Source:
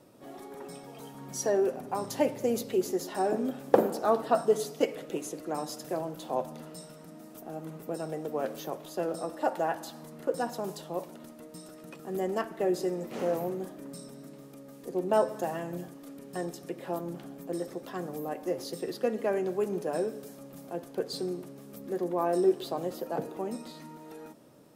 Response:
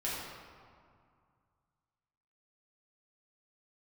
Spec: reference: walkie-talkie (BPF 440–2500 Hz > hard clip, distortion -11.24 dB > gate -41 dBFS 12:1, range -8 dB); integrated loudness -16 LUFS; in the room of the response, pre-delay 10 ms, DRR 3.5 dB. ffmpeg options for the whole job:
-filter_complex "[0:a]asplit=2[a][b];[1:a]atrim=start_sample=2205,adelay=10[c];[b][c]afir=irnorm=-1:irlink=0,volume=-8.5dB[d];[a][d]amix=inputs=2:normalize=0,highpass=440,lowpass=2.5k,asoftclip=type=hard:threshold=-24.5dB,agate=range=-8dB:threshold=-41dB:ratio=12,volume=18.5dB"

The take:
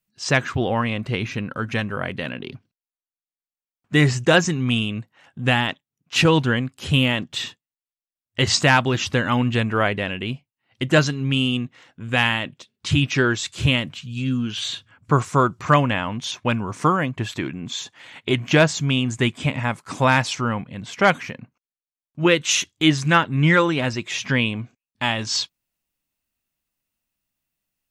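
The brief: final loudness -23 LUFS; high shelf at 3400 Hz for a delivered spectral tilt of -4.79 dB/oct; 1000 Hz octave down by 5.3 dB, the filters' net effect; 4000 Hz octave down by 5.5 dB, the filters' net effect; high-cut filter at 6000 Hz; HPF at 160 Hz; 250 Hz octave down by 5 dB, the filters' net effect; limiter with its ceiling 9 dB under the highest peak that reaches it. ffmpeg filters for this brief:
-af "highpass=160,lowpass=6k,equalizer=f=250:t=o:g=-5,equalizer=f=1k:t=o:g=-6,highshelf=f=3.4k:g=-4,equalizer=f=4k:t=o:g=-4,volume=6dB,alimiter=limit=-9dB:level=0:latency=1"

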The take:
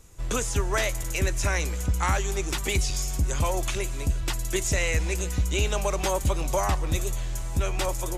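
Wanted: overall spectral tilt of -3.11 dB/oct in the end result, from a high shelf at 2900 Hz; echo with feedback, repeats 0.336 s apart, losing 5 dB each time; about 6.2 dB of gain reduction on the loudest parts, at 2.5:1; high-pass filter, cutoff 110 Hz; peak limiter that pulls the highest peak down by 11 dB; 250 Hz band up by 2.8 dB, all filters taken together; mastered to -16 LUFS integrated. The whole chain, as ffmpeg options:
-af "highpass=110,equalizer=f=250:t=o:g=4.5,highshelf=f=2.9k:g=8,acompressor=threshold=-29dB:ratio=2.5,alimiter=level_in=0.5dB:limit=-24dB:level=0:latency=1,volume=-0.5dB,aecho=1:1:336|672|1008|1344|1680|2016|2352:0.562|0.315|0.176|0.0988|0.0553|0.031|0.0173,volume=16.5dB"

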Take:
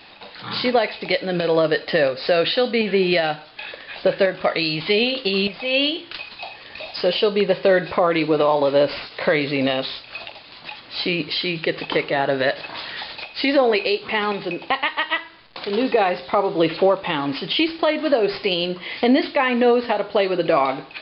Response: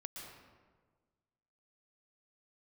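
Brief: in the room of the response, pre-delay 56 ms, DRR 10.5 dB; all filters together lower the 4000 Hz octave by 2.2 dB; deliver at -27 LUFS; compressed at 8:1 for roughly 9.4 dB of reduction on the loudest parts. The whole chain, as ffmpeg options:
-filter_complex "[0:a]equalizer=f=4k:t=o:g=-3,acompressor=threshold=-22dB:ratio=8,asplit=2[a][b];[1:a]atrim=start_sample=2205,adelay=56[c];[b][c]afir=irnorm=-1:irlink=0,volume=-7.5dB[d];[a][d]amix=inputs=2:normalize=0"

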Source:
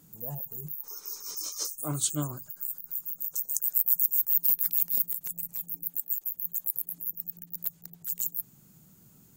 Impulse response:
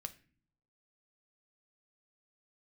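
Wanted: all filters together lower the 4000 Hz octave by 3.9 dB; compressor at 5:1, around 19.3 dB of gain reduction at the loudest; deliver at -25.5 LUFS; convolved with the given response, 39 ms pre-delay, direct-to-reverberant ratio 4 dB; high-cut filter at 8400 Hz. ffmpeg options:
-filter_complex "[0:a]lowpass=8.4k,equalizer=f=4k:t=o:g=-5,acompressor=threshold=-49dB:ratio=5,asplit=2[a][b];[1:a]atrim=start_sample=2205,adelay=39[c];[b][c]afir=irnorm=-1:irlink=0,volume=-1dB[d];[a][d]amix=inputs=2:normalize=0,volume=24.5dB"

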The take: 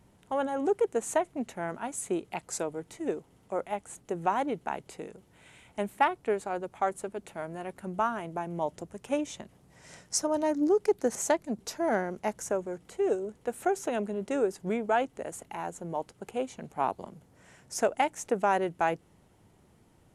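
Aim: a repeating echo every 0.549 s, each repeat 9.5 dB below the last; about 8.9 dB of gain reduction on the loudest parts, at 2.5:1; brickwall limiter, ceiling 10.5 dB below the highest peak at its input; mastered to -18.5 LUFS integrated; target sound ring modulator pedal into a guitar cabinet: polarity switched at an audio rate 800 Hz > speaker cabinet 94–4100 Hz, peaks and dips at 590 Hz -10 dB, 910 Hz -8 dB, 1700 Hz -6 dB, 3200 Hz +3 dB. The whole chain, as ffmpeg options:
-af "acompressor=threshold=-34dB:ratio=2.5,alimiter=level_in=5dB:limit=-24dB:level=0:latency=1,volume=-5dB,aecho=1:1:549|1098|1647|2196:0.335|0.111|0.0365|0.012,aeval=exprs='val(0)*sgn(sin(2*PI*800*n/s))':c=same,highpass=94,equalizer=f=590:t=q:w=4:g=-10,equalizer=f=910:t=q:w=4:g=-8,equalizer=f=1.7k:t=q:w=4:g=-6,equalizer=f=3.2k:t=q:w=4:g=3,lowpass=f=4.1k:w=0.5412,lowpass=f=4.1k:w=1.3066,volume=23.5dB"

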